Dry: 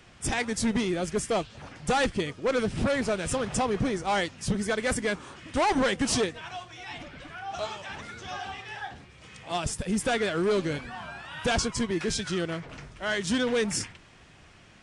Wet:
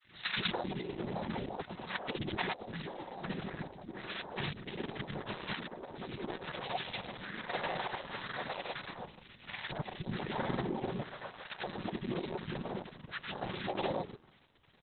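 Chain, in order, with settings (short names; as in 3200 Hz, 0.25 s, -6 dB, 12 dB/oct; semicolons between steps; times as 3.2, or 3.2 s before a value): Doppler pass-by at 4.36, 11 m/s, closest 14 m; bell 4800 Hz -15 dB 0.8 oct; noise vocoder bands 6; comb 5.4 ms, depth 50%; in parallel at -9 dB: soft clip -25.5 dBFS, distortion -12 dB; on the sum: three bands offset in time highs, lows, mids 0.12/0.18 s, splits 320/1300 Hz; negative-ratio compressor -40 dBFS, ratio -1; thin delay 1.138 s, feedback 69%, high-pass 4400 Hz, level -21 dB; grains; gain +3 dB; Opus 6 kbps 48000 Hz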